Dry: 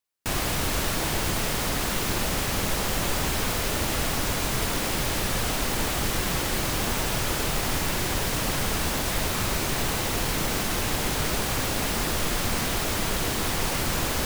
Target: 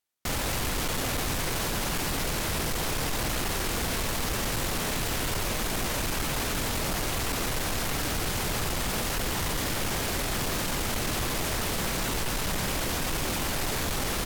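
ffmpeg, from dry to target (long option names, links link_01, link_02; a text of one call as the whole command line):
ffmpeg -i in.wav -af "asetrate=35002,aresample=44100,atempo=1.25992,asoftclip=type=hard:threshold=-25.5dB" out.wav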